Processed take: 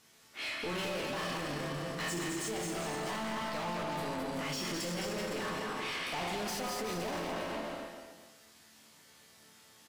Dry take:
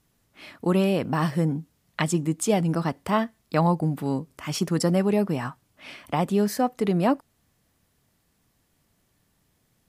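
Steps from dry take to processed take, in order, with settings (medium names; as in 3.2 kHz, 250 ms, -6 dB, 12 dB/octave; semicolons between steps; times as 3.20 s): backward echo that repeats 127 ms, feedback 45%, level -11 dB; peaking EQ 5.6 kHz +4.5 dB 1.6 oct; chord resonator D2 minor, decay 0.54 s; overdrive pedal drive 32 dB, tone 5.6 kHz, clips at -26 dBFS; peaking EQ 920 Hz -2 dB; on a send: bouncing-ball echo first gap 210 ms, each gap 0.8×, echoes 5; on the sum: peak limiter -28.5 dBFS, peak gain reduction 7.5 dB; trim -1 dB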